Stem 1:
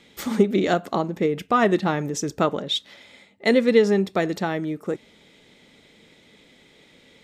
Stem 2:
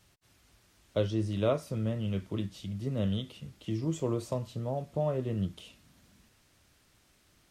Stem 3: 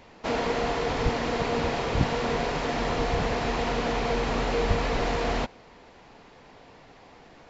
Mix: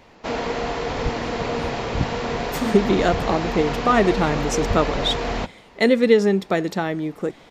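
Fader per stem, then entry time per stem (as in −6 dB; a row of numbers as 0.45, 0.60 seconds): +1.5, −8.0, +1.5 decibels; 2.35, 0.00, 0.00 seconds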